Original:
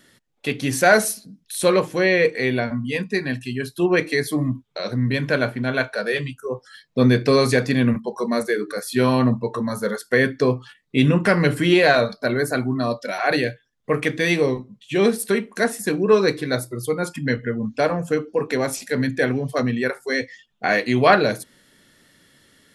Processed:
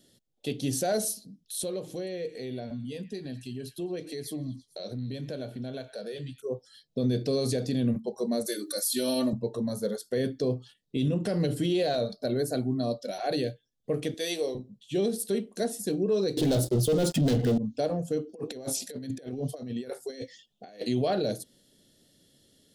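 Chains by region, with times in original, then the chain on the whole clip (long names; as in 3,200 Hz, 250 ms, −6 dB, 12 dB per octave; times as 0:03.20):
0:01.62–0:06.42: downward compressor 2.5 to 1, threshold −29 dBFS + echo through a band-pass that steps 112 ms, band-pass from 1,800 Hz, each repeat 0.7 octaves, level −11.5 dB
0:08.46–0:09.33: RIAA equalisation recording + comb filter 3.4 ms, depth 88%
0:14.14–0:14.55: high-pass filter 500 Hz + high-shelf EQ 9,700 Hz +10.5 dB
0:16.37–0:17.58: high-shelf EQ 6,300 Hz −10.5 dB + leveller curve on the samples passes 5
0:18.29–0:20.89: low-shelf EQ 140 Hz −9 dB + compressor whose output falls as the input rises −28 dBFS, ratio −0.5
whole clip: flat-topped bell 1,500 Hz −15 dB; brickwall limiter −13.5 dBFS; level −5.5 dB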